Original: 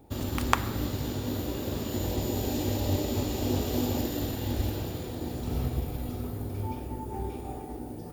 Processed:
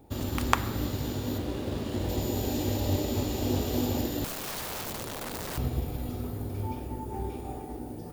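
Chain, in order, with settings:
0:01.38–0:02.09: running median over 5 samples
0:04.24–0:05.58: wrap-around overflow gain 31 dB

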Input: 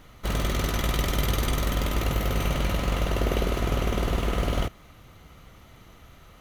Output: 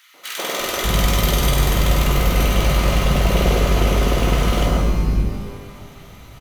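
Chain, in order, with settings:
three-band delay without the direct sound highs, mids, lows 140/600 ms, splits 320/1,500 Hz
reverb with rising layers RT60 1.4 s, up +12 semitones, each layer −8 dB, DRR 2.5 dB
level +7.5 dB

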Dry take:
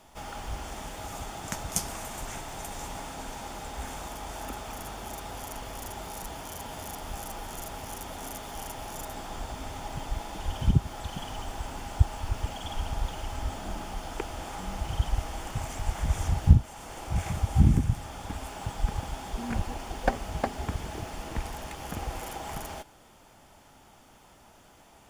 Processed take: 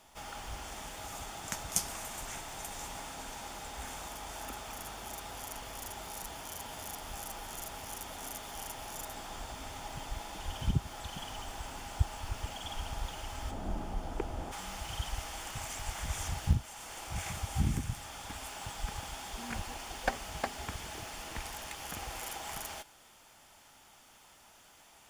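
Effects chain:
tilt shelving filter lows −3.5 dB, about 930 Hz, from 0:13.50 lows +5 dB, from 0:14.51 lows −6.5 dB
level −4.5 dB

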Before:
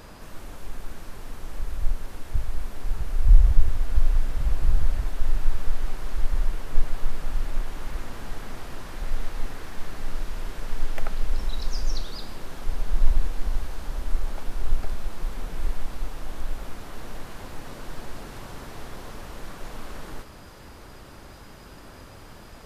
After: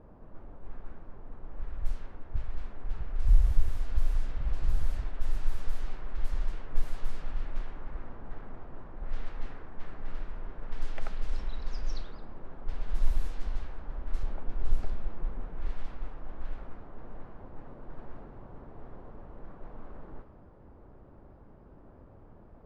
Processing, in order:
low-pass that shuts in the quiet parts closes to 690 Hz, open at −10.5 dBFS
0:14.23–0:15.41: tilt shelving filter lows +3.5 dB
level −7 dB

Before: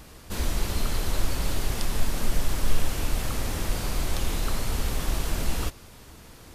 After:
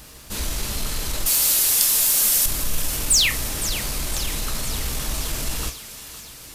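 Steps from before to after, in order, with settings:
0:01.26–0:02.46: RIAA equalisation recording
0:03.10–0:03.30: sound drawn into the spectrogram fall 1,700–10,000 Hz −22 dBFS
on a send: feedback echo with a high-pass in the loop 511 ms, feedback 62%, high-pass 1,100 Hz, level −12 dB
on the sum: convolution reverb, pre-delay 3 ms, DRR 6.5 dB
in parallel at −4 dB: soft clipping −23 dBFS, distortion −10 dB
on the sum: high-shelf EQ 2,700 Hz +10 dB
surface crackle 500 per second −37 dBFS
level −5 dB

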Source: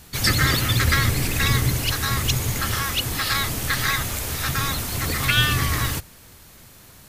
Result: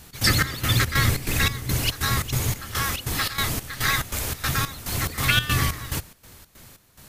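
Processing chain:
gate pattern "x.xx..xx.x" 142 BPM −12 dB

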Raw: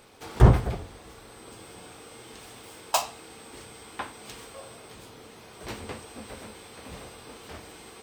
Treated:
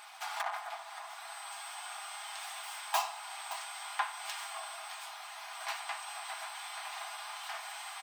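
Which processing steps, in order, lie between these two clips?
stylus tracing distortion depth 0.12 ms
single-tap delay 569 ms −22.5 dB
downward compressor 1.5 to 1, threshold −42 dBFS, peak gain reduction 12 dB
on a send at −17 dB: convolution reverb RT60 3.3 s, pre-delay 77 ms
on the sum: gain into a clipping stage and back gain 29.5 dB
linear-phase brick-wall high-pass 640 Hz
parametric band 1,200 Hz +4 dB 3 octaves
comb filter 4.9 ms, depth 41%
level +2.5 dB

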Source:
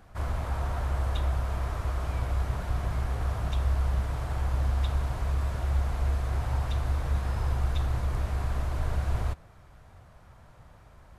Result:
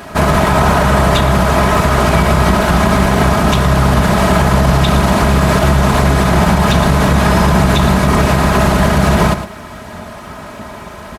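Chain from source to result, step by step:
lower of the sound and its delayed copy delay 3.1 ms
high-pass filter 110 Hz 12 dB per octave
comb filter 4.8 ms, depth 33%
on a send: single-tap delay 112 ms −14 dB
on the sum: boost into a limiter +29 dB
level −1 dB

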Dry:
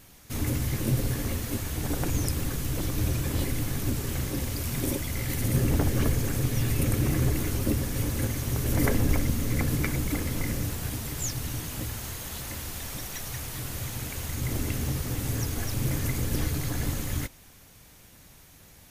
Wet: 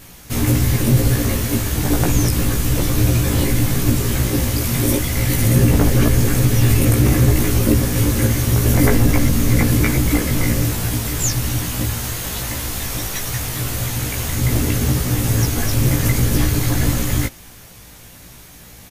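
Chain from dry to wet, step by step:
in parallel at +2 dB: brickwall limiter −17.5 dBFS, peak gain reduction 10 dB
on the sum: double-tracking delay 17 ms −2 dB
level +2.5 dB

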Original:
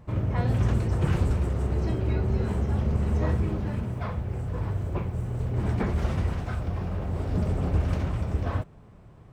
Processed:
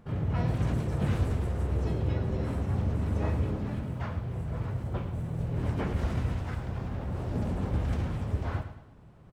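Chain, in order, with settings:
pitch-shifted copies added +5 semitones −3 dB
repeating echo 107 ms, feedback 41%, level −10.5 dB
level −6 dB

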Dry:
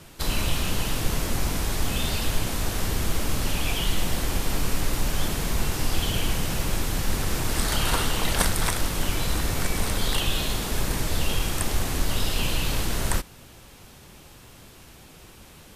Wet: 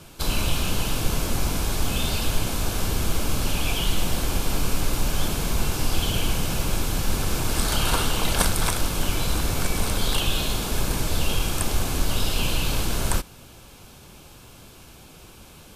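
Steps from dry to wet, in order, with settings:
notch filter 1,900 Hz, Q 6.3
level +1.5 dB

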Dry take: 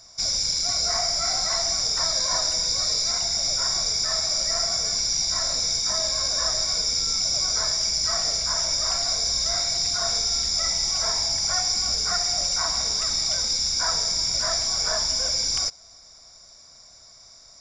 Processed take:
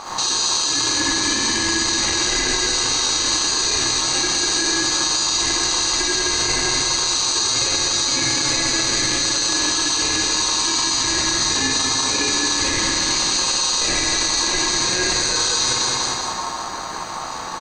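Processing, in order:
background noise brown −40 dBFS
high-pass filter 65 Hz 12 dB per octave
convolution reverb RT60 0.90 s, pre-delay 47 ms, DRR −8 dB
speech leveller
0:07.56–0:09.59: comb filter 7.2 ms, depth 85%
ring modulation 1,000 Hz
high-shelf EQ 5,100 Hz −9 dB
repeating echo 191 ms, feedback 55%, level −6 dB
boost into a limiter +19.5 dB
level −8 dB

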